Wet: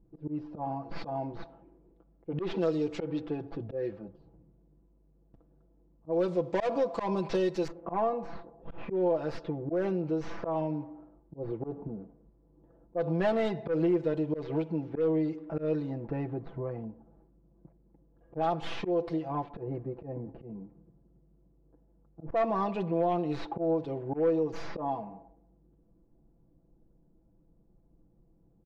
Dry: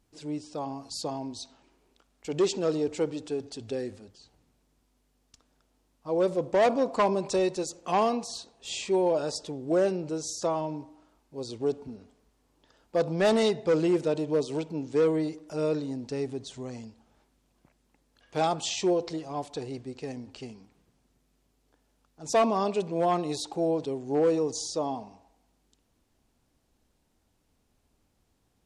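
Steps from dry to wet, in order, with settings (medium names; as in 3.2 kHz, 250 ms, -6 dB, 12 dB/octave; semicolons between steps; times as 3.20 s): tracing distortion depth 0.15 ms; comb 6 ms, depth 81%; slow attack 149 ms; level-controlled noise filter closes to 400 Hz, open at -23.5 dBFS; compression 2:1, threshold -42 dBFS, peak gain reduction 14 dB; low-pass 4.2 kHz 12 dB/octave, from 7.68 s 1.2 kHz, from 8.78 s 2.2 kHz; trim +7 dB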